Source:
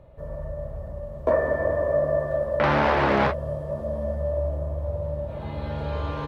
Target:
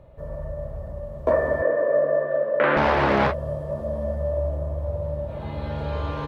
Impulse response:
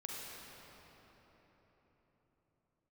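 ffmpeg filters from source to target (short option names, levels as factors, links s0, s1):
-filter_complex "[0:a]asettb=1/sr,asplit=3[s0][s1][s2];[s0]atrim=end=1.624[s3];[s1]atrim=start=1.62:end=2.77,asetpts=PTS-STARTPTS,afade=t=in:d=0.004:c=qsin,afade=t=out:st=1.146:d=0.004:c=qsin,highpass=f=180:w=0.5412,highpass=f=180:w=1.3066,equalizer=f=190:t=q:w=4:g=-9,equalizer=f=480:t=q:w=4:g=7,equalizer=f=830:t=q:w=4:g=-7,equalizer=f=1600:t=q:w=4:g=5,lowpass=f=3200:w=0.5412,lowpass=f=3200:w=1.3066[s4];[s2]atrim=start=2.766[s5];[s3][s4]acrossfade=d=0.004:c1=hsin:c2=qsin[s6];[s6][s5]acrossfade=d=0.004:c1=qsin:c2=hsin,volume=1.12"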